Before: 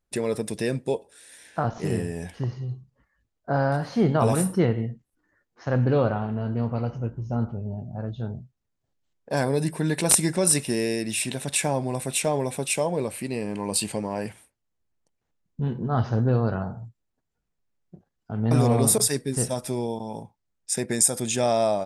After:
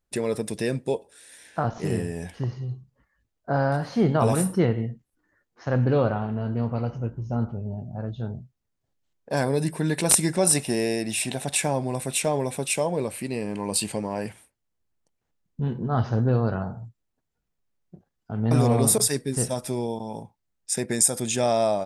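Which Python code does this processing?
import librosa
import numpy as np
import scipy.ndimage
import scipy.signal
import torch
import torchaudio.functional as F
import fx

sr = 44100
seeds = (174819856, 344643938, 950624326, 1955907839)

y = fx.peak_eq(x, sr, hz=740.0, db=9.5, octaves=0.43, at=(10.39, 11.6))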